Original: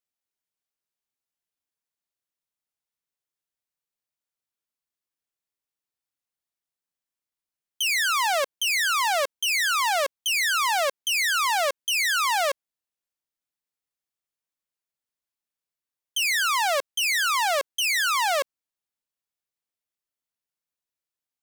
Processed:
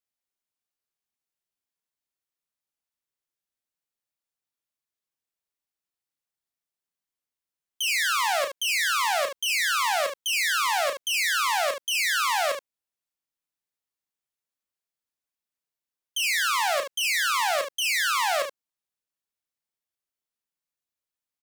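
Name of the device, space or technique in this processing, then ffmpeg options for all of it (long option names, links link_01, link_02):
slapback doubling: -filter_complex "[0:a]asplit=3[link_01][link_02][link_03];[link_02]adelay=32,volume=-7dB[link_04];[link_03]adelay=73,volume=-8.5dB[link_05];[link_01][link_04][link_05]amix=inputs=3:normalize=0,volume=-2.5dB"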